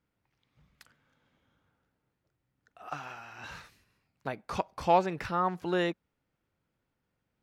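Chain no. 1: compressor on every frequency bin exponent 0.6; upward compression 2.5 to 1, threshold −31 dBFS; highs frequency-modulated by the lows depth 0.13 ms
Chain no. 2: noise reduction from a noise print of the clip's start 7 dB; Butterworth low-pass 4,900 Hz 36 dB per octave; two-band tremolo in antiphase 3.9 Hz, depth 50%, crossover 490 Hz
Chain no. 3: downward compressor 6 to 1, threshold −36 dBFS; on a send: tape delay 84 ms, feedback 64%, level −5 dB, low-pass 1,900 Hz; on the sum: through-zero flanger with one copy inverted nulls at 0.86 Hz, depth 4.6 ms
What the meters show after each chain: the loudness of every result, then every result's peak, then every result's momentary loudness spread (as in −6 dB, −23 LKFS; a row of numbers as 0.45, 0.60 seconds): −31.0, −34.0, −44.0 LKFS; −9.5, −13.5, −27.5 dBFS; 18, 18, 22 LU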